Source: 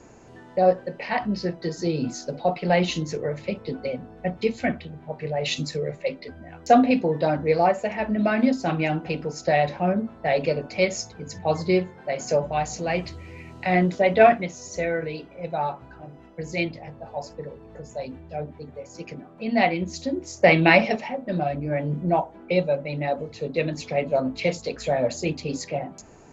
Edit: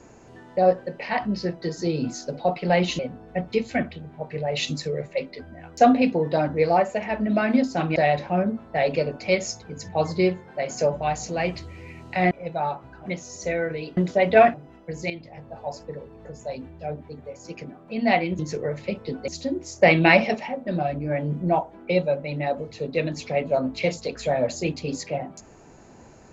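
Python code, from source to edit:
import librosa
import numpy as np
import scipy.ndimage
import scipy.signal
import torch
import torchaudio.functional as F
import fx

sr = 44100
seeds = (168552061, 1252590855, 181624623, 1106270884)

y = fx.edit(x, sr, fx.move(start_s=2.99, length_s=0.89, to_s=19.89),
    fx.cut(start_s=8.85, length_s=0.61),
    fx.swap(start_s=13.81, length_s=0.57, other_s=15.29, other_length_s=0.75),
    fx.fade_in_from(start_s=16.6, length_s=0.41, floor_db=-12.5), tone=tone)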